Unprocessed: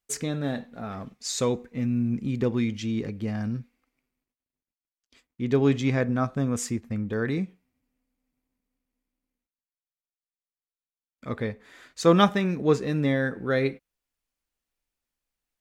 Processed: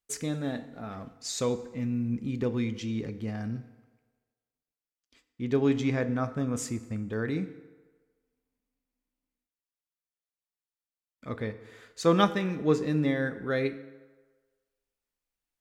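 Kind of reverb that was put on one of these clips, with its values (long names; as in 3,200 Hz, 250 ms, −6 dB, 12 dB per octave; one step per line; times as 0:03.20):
feedback delay network reverb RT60 1.4 s, low-frequency decay 0.7×, high-frequency decay 0.65×, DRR 11.5 dB
level −4 dB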